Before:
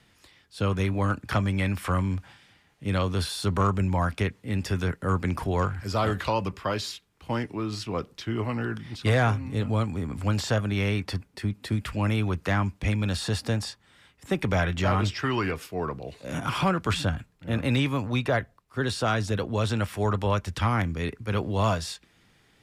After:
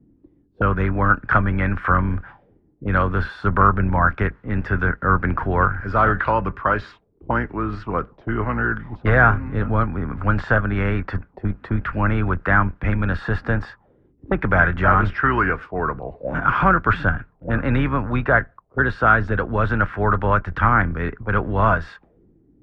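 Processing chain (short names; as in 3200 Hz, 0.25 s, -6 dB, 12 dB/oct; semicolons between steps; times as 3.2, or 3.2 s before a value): octaver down 2 oct, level -4 dB; envelope low-pass 280–1500 Hz up, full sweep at -28 dBFS; gain +4 dB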